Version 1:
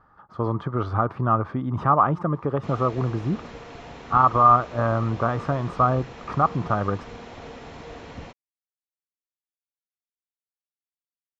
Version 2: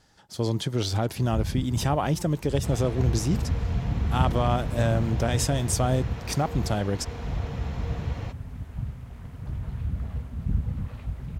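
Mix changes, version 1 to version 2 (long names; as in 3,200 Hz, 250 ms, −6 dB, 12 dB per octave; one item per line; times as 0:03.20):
speech: remove low-pass with resonance 1,200 Hz, resonance Q 12
first sound: unmuted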